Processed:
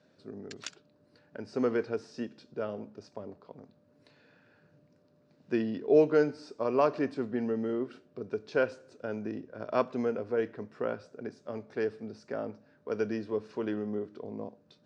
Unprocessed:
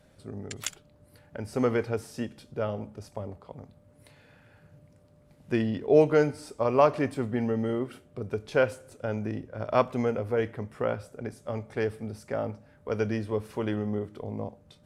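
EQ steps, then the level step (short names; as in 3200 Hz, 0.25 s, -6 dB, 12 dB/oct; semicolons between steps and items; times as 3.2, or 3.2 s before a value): speaker cabinet 240–5300 Hz, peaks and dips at 560 Hz -5 dB, 820 Hz -8 dB, 1200 Hz -5 dB, 2100 Hz -9 dB, 3200 Hz -8 dB; 0.0 dB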